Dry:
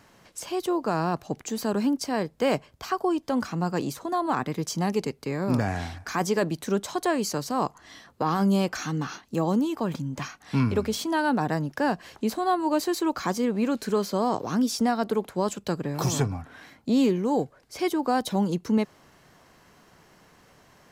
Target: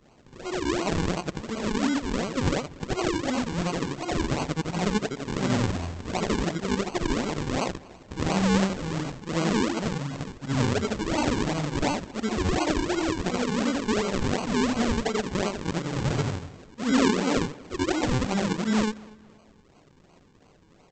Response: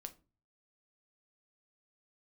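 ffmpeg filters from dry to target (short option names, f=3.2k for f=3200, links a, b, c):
-filter_complex "[0:a]afftfilt=real='re':imag='-im':win_size=8192:overlap=0.75,aresample=16000,acrusher=samples=17:mix=1:aa=0.000001:lfo=1:lforange=17:lforate=2.8,aresample=44100,asplit=2[a][b];[b]adelay=238,lowpass=f=4.1k:p=1,volume=-22dB,asplit=2[c][d];[d]adelay=238,lowpass=f=4.1k:p=1,volume=0.37,asplit=2[e][f];[f]adelay=238,lowpass=f=4.1k:p=1,volume=0.37[g];[a][c][e][g]amix=inputs=4:normalize=0,volume=4dB"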